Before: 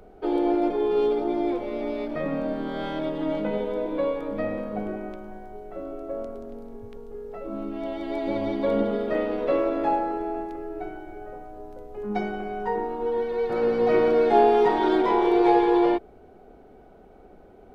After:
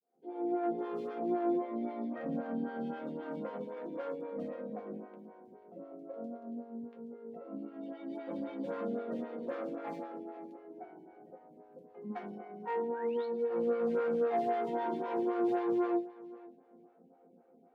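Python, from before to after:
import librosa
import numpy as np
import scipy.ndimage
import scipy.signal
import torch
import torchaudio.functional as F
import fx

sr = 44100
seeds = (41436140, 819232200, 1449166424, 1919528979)

p1 = fx.fade_in_head(x, sr, length_s=1.01)
p2 = fx.high_shelf(p1, sr, hz=2200.0, db=-7.0)
p3 = fx.rider(p2, sr, range_db=4, speed_s=2.0)
p4 = p2 + (p3 * librosa.db_to_amplitude(-1.0))
p5 = np.clip(p4, -10.0 ** (-15.5 / 20.0), 10.0 ** (-15.5 / 20.0))
p6 = fx.spec_paint(p5, sr, seeds[0], shape='rise', start_s=12.94, length_s=0.32, low_hz=1400.0, high_hz=4500.0, level_db=-36.0)
p7 = fx.resonator_bank(p6, sr, root=53, chord='sus4', decay_s=0.23)
p8 = 10.0 ** (-23.0 / 20.0) * np.tanh(p7 / 10.0 ** (-23.0 / 20.0))
p9 = scipy.signal.sosfilt(scipy.signal.butter(4, 150.0, 'highpass', fs=sr, output='sos'), p8)
p10 = fx.bass_treble(p9, sr, bass_db=8, treble_db=-4)
p11 = p10 + fx.echo_feedback(p10, sr, ms=485, feedback_pct=18, wet_db=-18.5, dry=0)
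y = fx.stagger_phaser(p11, sr, hz=3.8)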